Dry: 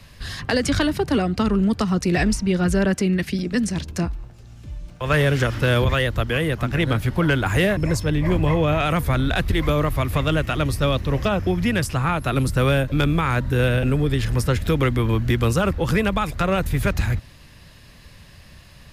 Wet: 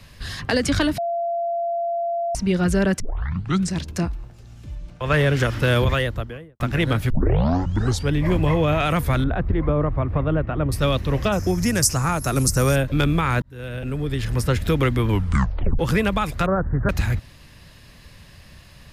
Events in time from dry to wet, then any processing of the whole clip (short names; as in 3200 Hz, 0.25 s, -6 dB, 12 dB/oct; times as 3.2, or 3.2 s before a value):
0.98–2.35 bleep 684 Hz -21 dBFS
3 tape start 0.73 s
4.75–5.37 high shelf 7500 Hz -8.5 dB
5.87–6.6 studio fade out
7.1 tape start 1.04 s
9.24–10.72 LPF 1100 Hz
11.32–12.76 resonant high shelf 4500 Hz +10 dB, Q 3
13.42–14.52 fade in
15.09 tape stop 0.70 s
16.46–16.89 steep low-pass 1700 Hz 72 dB/oct